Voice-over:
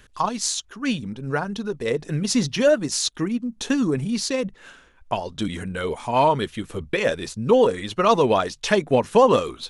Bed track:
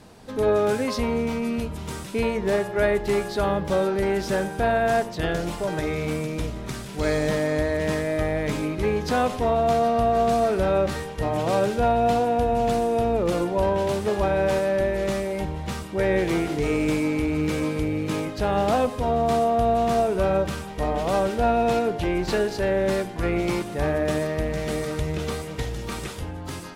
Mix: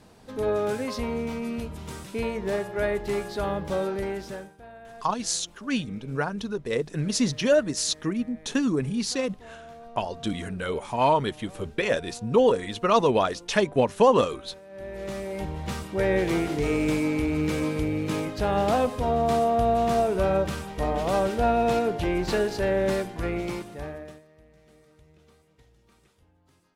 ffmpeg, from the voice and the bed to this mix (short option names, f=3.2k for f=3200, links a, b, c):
-filter_complex "[0:a]adelay=4850,volume=-3dB[a];[1:a]volume=18dB,afade=t=out:st=3.91:d=0.66:silence=0.105925,afade=t=in:st=14.69:d=1.01:silence=0.0707946,afade=t=out:st=22.86:d=1.36:silence=0.0375837[b];[a][b]amix=inputs=2:normalize=0"